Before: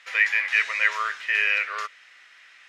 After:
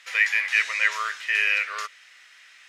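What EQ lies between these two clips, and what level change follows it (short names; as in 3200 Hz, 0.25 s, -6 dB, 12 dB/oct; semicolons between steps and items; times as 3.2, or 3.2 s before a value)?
high shelf 4200 Hz +11.5 dB; -2.5 dB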